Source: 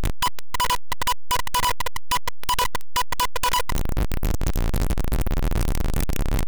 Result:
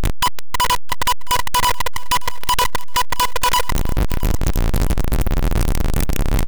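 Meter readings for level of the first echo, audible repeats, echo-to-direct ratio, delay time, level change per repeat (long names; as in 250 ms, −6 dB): −21.0 dB, 2, −20.5 dB, 668 ms, −11.0 dB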